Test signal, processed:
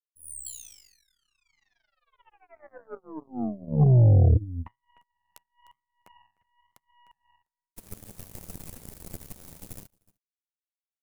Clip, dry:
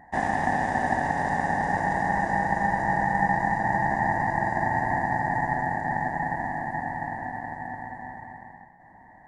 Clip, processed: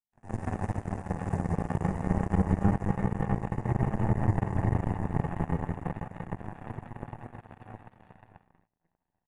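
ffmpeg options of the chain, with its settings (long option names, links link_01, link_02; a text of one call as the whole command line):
ffmpeg -i in.wav -filter_complex "[0:a]acrossover=split=150[link_01][link_02];[link_02]acompressor=threshold=-35dB:ratio=10[link_03];[link_01][link_03]amix=inputs=2:normalize=0,flanger=delay=8.1:depth=4.1:regen=3:speed=0.28:shape=triangular,bass=frequency=250:gain=-3,treble=frequency=4000:gain=15,aecho=1:1:303:0.316,flanger=delay=4.4:depth=7.6:regen=80:speed=1:shape=sinusoidal,firequalizer=gain_entry='entry(180,0);entry(280,-8);entry(1400,-22);entry(2100,-20);entry(3300,-28);entry(10000,-18)':delay=0.05:min_phase=1,dynaudnorm=framelen=170:gausssize=3:maxgain=15.5dB,aeval=exprs='0.141*(cos(1*acos(clip(val(0)/0.141,-1,1)))-cos(1*PI/2))+0.00708*(cos(5*acos(clip(val(0)/0.141,-1,1)))-cos(5*PI/2))+0.00501*(cos(6*acos(clip(val(0)/0.141,-1,1)))-cos(6*PI/2))+0.0251*(cos(7*acos(clip(val(0)/0.141,-1,1)))-cos(7*PI/2))+0.00112*(cos(8*acos(clip(val(0)/0.141,-1,1)))-cos(8*PI/2))':channel_layout=same,volume=6.5dB" out.wav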